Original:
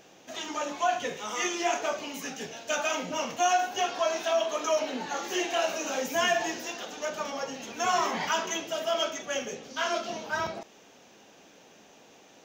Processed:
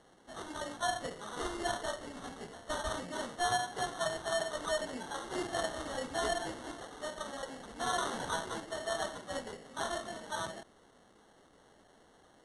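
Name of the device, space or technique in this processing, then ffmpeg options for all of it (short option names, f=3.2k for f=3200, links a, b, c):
crushed at another speed: -af "asetrate=88200,aresample=44100,acrusher=samples=9:mix=1:aa=0.000001,asetrate=22050,aresample=44100,volume=-7.5dB"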